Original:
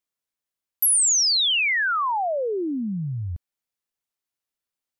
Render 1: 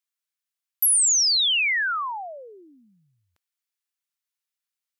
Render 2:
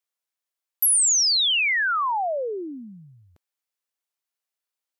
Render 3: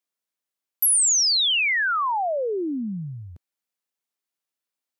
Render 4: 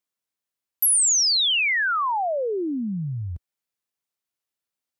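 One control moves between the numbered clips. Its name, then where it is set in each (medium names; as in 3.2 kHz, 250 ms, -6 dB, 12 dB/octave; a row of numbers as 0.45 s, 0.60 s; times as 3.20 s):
high-pass, cutoff frequency: 1.3 kHz, 450 Hz, 170 Hz, 68 Hz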